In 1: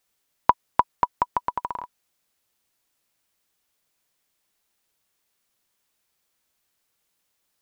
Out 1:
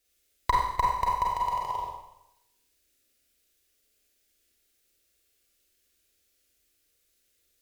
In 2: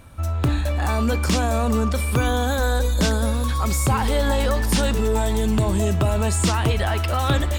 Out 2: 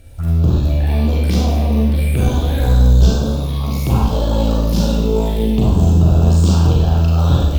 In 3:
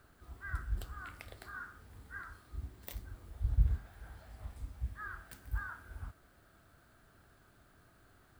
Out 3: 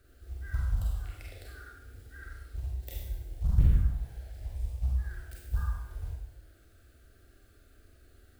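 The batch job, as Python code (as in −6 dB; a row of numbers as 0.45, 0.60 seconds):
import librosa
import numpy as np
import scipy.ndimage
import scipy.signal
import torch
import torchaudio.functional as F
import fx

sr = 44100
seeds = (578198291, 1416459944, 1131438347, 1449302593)

p1 = fx.low_shelf(x, sr, hz=140.0, db=11.0)
p2 = p1 + fx.room_flutter(p1, sr, wall_m=8.2, rt60_s=0.23, dry=0)
p3 = fx.clip_asym(p2, sr, top_db=-22.5, bottom_db=-5.0)
p4 = fx.quant_float(p3, sr, bits=2)
p5 = p3 + F.gain(torch.from_numpy(p4), -8.5).numpy()
p6 = fx.env_phaser(p5, sr, low_hz=160.0, high_hz=2000.0, full_db=-10.5)
p7 = fx.rev_schroeder(p6, sr, rt60_s=0.84, comb_ms=32, drr_db=-3.0)
y = F.gain(torch.from_numpy(p7), -4.0).numpy()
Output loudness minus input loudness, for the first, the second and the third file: −2.0, +6.0, +8.5 LU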